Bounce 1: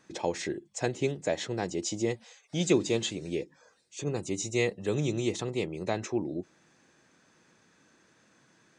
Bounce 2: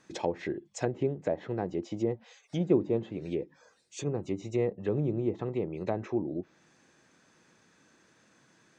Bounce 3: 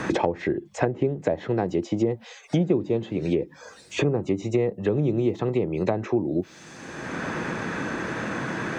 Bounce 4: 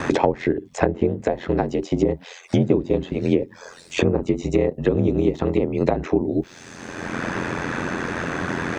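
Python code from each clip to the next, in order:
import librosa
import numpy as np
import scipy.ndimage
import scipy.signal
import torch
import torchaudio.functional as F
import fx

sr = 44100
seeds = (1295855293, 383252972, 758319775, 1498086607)

y1 = fx.env_lowpass_down(x, sr, base_hz=890.0, full_db=-26.5)
y2 = fx.band_squash(y1, sr, depth_pct=100)
y2 = F.gain(torch.from_numpy(y2), 7.0).numpy()
y3 = y2 * np.sin(2.0 * np.pi * 43.0 * np.arange(len(y2)) / sr)
y3 = F.gain(torch.from_numpy(y3), 6.5).numpy()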